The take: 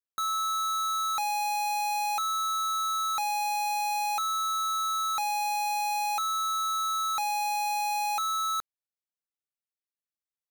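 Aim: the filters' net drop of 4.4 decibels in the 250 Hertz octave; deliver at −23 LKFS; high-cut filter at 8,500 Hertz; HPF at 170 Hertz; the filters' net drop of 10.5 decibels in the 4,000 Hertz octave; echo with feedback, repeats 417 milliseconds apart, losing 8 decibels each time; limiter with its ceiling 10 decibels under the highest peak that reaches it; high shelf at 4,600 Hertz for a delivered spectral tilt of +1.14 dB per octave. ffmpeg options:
ffmpeg -i in.wav -af "highpass=170,lowpass=8500,equalizer=frequency=250:width_type=o:gain=-4.5,equalizer=frequency=4000:width_type=o:gain=-7.5,highshelf=frequency=4600:gain=-7,alimiter=level_in=12.5dB:limit=-24dB:level=0:latency=1,volume=-12.5dB,aecho=1:1:417|834|1251|1668|2085:0.398|0.159|0.0637|0.0255|0.0102,volume=14dB" out.wav

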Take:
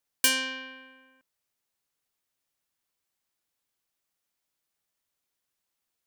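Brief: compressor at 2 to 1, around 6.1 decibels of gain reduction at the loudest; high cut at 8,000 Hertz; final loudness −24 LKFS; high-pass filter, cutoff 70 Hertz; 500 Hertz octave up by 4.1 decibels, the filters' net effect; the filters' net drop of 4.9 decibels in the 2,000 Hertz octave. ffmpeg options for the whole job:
ffmpeg -i in.wav -af "highpass=70,lowpass=8000,equalizer=frequency=500:width_type=o:gain=4.5,equalizer=frequency=2000:width_type=o:gain=-7,acompressor=threshold=-33dB:ratio=2,volume=12dB" out.wav

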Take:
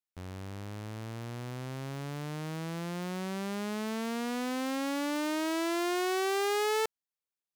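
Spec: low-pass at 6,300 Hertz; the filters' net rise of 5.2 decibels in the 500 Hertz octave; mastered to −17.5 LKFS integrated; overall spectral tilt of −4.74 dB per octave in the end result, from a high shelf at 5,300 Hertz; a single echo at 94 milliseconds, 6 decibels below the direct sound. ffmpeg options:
ffmpeg -i in.wav -af "lowpass=6300,equalizer=frequency=500:width_type=o:gain=7,highshelf=frequency=5300:gain=8.5,aecho=1:1:94:0.501,volume=12.5dB" out.wav

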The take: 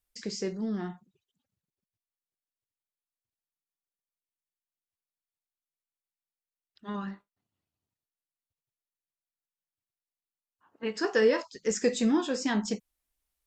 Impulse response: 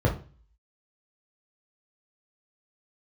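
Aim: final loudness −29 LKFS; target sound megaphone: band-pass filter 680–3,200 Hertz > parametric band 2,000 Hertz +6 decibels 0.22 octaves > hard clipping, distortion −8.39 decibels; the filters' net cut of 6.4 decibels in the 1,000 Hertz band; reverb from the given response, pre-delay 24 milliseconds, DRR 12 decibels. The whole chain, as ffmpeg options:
-filter_complex "[0:a]equalizer=frequency=1000:width_type=o:gain=-6.5,asplit=2[link_01][link_02];[1:a]atrim=start_sample=2205,adelay=24[link_03];[link_02][link_03]afir=irnorm=-1:irlink=0,volume=-24.5dB[link_04];[link_01][link_04]amix=inputs=2:normalize=0,highpass=680,lowpass=3200,equalizer=frequency=2000:width_type=o:width=0.22:gain=6,asoftclip=type=hard:threshold=-32dB,volume=11dB"

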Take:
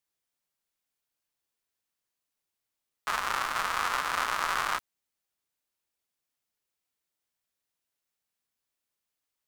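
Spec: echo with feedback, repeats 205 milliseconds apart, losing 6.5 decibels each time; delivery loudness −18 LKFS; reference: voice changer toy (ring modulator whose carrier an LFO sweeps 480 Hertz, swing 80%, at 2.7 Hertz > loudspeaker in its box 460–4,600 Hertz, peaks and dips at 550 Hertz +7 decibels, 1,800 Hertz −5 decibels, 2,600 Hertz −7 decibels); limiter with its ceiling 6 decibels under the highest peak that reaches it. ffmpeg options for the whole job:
ffmpeg -i in.wav -af "alimiter=limit=-18.5dB:level=0:latency=1,aecho=1:1:205|410|615|820|1025|1230:0.473|0.222|0.105|0.0491|0.0231|0.0109,aeval=exprs='val(0)*sin(2*PI*480*n/s+480*0.8/2.7*sin(2*PI*2.7*n/s))':channel_layout=same,highpass=460,equalizer=frequency=550:width_type=q:width=4:gain=7,equalizer=frequency=1800:width_type=q:width=4:gain=-5,equalizer=frequency=2600:width_type=q:width=4:gain=-7,lowpass=frequency=4600:width=0.5412,lowpass=frequency=4600:width=1.3066,volume=19.5dB" out.wav

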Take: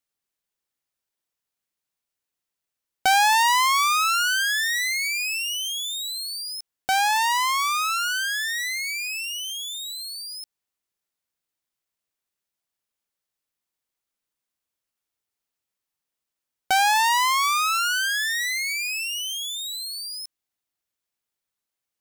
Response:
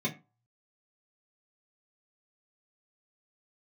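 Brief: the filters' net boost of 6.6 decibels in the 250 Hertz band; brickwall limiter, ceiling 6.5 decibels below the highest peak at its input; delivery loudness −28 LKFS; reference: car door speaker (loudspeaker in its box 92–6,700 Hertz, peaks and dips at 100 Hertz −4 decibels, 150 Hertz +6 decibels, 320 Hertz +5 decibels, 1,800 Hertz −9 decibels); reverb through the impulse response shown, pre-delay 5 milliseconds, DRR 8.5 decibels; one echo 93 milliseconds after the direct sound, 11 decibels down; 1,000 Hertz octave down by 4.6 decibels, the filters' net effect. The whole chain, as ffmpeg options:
-filter_complex "[0:a]equalizer=frequency=250:width_type=o:gain=5.5,equalizer=frequency=1000:width_type=o:gain=-5.5,alimiter=limit=-18dB:level=0:latency=1,aecho=1:1:93:0.282,asplit=2[link_01][link_02];[1:a]atrim=start_sample=2205,adelay=5[link_03];[link_02][link_03]afir=irnorm=-1:irlink=0,volume=-14.5dB[link_04];[link_01][link_04]amix=inputs=2:normalize=0,highpass=92,equalizer=frequency=100:width_type=q:width=4:gain=-4,equalizer=frequency=150:width_type=q:width=4:gain=6,equalizer=frequency=320:width_type=q:width=4:gain=5,equalizer=frequency=1800:width_type=q:width=4:gain=-9,lowpass=frequency=6700:width=0.5412,lowpass=frequency=6700:width=1.3066,volume=-1.5dB"

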